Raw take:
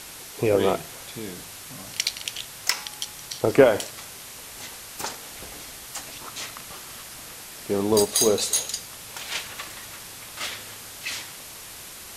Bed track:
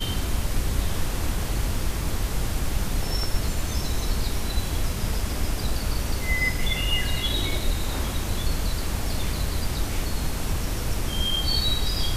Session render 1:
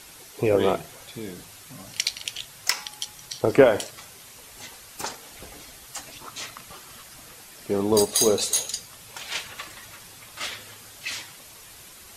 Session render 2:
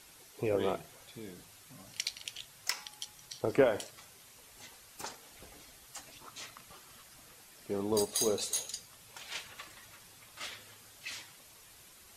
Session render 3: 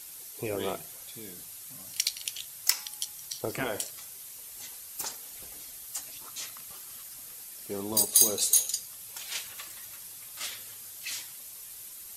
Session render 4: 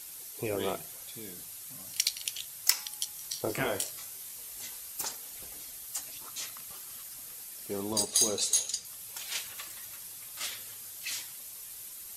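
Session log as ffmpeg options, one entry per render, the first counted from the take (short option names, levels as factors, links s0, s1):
-af "afftdn=nr=7:nf=-41"
-af "volume=0.299"
-af "afftfilt=real='re*lt(hypot(re,im),0.316)':imag='im*lt(hypot(re,im),0.316)':win_size=1024:overlap=0.75,aemphasis=mode=production:type=75fm"
-filter_complex "[0:a]asettb=1/sr,asplit=3[s0][s1][s2];[s0]atrim=end=3.134[s3];[s1]atrim=start=3.13:end=4.92,asetpts=PTS-STARTPTS,afade=t=in:d=0.004:c=qsin,afade=t=out:st=1.786:d=0.004:c=qsin,asplit=2[s4][s5];[s5]adelay=21,volume=0.531[s6];[s4][s6]amix=inputs=2:normalize=0,atrim=end_sample=78939[s7];[s2]atrim=start=4.916[s8];[s3][s7]acrossfade=d=0.004:c1=hsin:c2=qsin[s9];[s9][s8]acrossfade=d=0.004:c1=qsin:c2=hsin,asettb=1/sr,asplit=3[s10][s11][s12];[s10]atrim=end=7.934[s13];[s11]atrim=start=7.93:end=8.85,asetpts=PTS-STARTPTS,afade=t=in:d=0.004:c=qsin,afade=t=out:st=0.916:d=0.004:c=qsin,lowpass=7600[s14];[s12]atrim=start=8.846[s15];[s13][s14]acrossfade=d=0.004:c1=hsin:c2=qsin[s16];[s16][s15]acrossfade=d=0.004:c1=qsin:c2=hsin"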